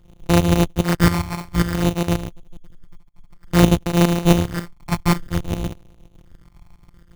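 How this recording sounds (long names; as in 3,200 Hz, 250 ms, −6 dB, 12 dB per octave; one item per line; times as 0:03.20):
a buzz of ramps at a fixed pitch in blocks of 256 samples
tremolo saw up 7.4 Hz, depth 75%
phaser sweep stages 8, 0.56 Hz, lowest notch 470–2,500 Hz
aliases and images of a low sample rate 3,300 Hz, jitter 0%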